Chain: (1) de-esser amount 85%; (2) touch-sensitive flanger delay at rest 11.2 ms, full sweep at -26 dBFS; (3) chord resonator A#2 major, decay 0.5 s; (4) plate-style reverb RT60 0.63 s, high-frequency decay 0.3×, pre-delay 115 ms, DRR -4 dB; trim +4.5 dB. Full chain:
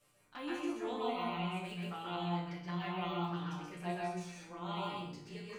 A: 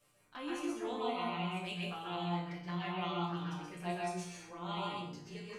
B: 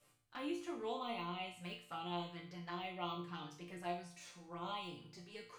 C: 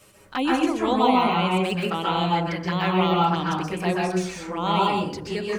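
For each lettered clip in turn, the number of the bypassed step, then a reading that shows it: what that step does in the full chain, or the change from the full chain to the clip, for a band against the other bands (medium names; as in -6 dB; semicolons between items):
1, 8 kHz band +4.0 dB; 4, momentary loudness spread change +2 LU; 3, 125 Hz band -2.5 dB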